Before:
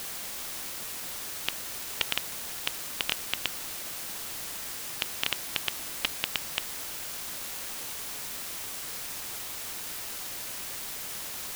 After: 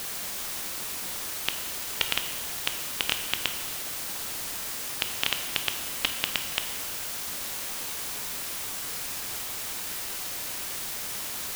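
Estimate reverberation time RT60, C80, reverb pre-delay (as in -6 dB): 1.3 s, 10.0 dB, 7 ms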